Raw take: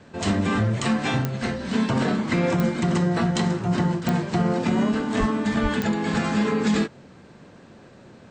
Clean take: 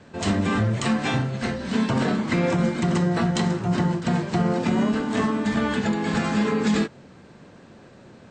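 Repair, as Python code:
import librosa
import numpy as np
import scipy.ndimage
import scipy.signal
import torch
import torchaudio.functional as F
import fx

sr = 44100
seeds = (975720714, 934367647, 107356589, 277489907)

y = fx.fix_declick_ar(x, sr, threshold=10.0)
y = fx.fix_deplosive(y, sr, at_s=(5.19, 5.62))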